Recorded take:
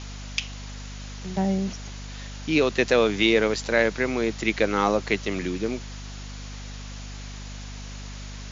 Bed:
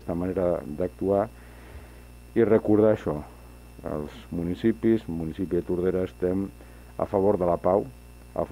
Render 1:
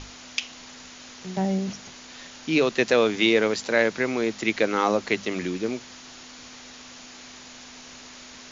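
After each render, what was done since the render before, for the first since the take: notches 50/100/150/200 Hz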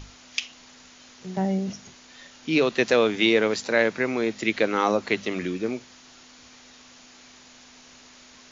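noise print and reduce 6 dB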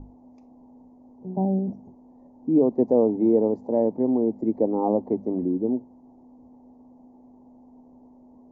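elliptic low-pass 890 Hz, stop band 40 dB; bell 260 Hz +8.5 dB 0.5 oct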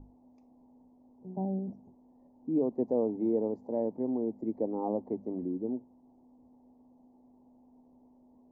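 gain -9.5 dB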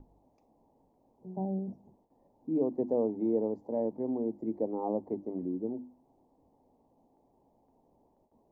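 notches 50/100/150/200/250/300/350 Hz; gate with hold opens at -60 dBFS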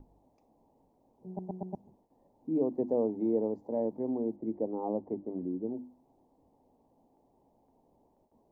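1.27 stutter in place 0.12 s, 4 plays; 4.36–5.72 air absorption 390 m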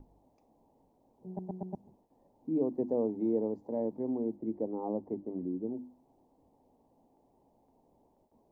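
dynamic EQ 670 Hz, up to -3 dB, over -44 dBFS, Q 1.1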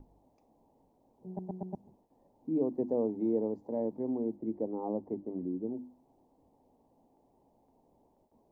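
nothing audible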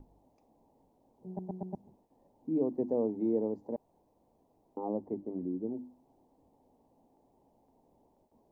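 3.76–4.77 room tone

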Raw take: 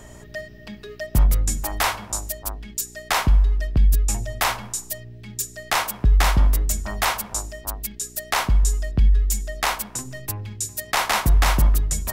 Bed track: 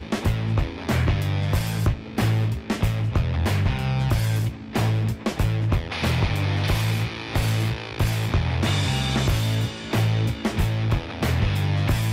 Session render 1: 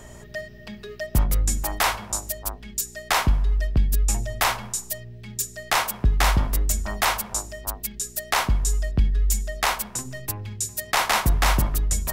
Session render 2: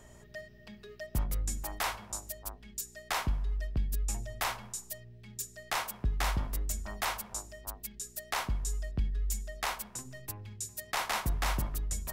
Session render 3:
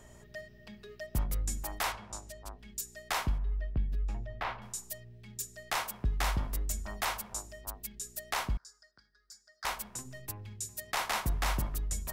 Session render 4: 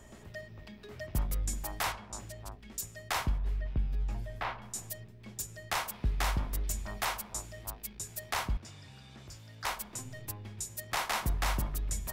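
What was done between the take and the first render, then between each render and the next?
de-hum 50 Hz, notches 6
gain -11.5 dB
1.92–2.59 air absorption 60 m; 3.38–4.62 air absorption 340 m; 8.57–9.65 double band-pass 2700 Hz, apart 1.7 oct
add bed track -29 dB

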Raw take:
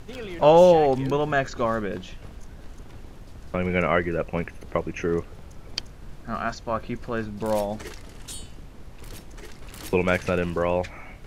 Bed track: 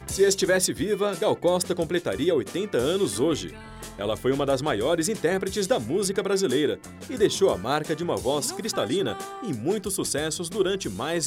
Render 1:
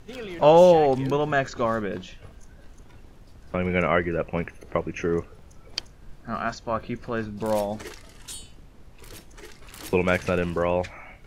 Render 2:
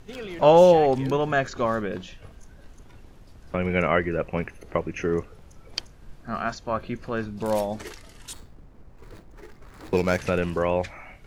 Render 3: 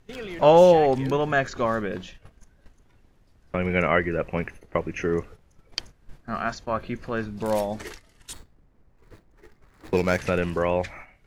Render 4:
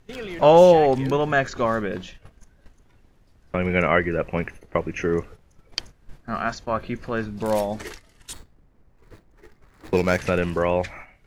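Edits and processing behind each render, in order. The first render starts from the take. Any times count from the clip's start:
noise print and reduce 6 dB
8.33–10.18 median filter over 15 samples
gate -41 dBFS, range -11 dB; bell 1900 Hz +3 dB 0.48 oct
gain +2 dB; limiter -3 dBFS, peak gain reduction 1 dB

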